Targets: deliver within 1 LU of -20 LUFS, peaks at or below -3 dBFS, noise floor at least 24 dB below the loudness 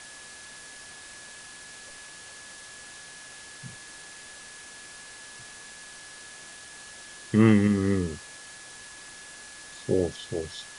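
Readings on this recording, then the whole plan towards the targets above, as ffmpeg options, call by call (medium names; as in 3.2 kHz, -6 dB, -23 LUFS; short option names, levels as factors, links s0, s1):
steady tone 1.7 kHz; tone level -48 dBFS; noise floor -46 dBFS; noise floor target -49 dBFS; loudness -25.0 LUFS; peak level -8.5 dBFS; loudness target -20.0 LUFS
-> -af "bandreject=f=1700:w=30"
-af "afftdn=nr=6:nf=-46"
-af "volume=1.78"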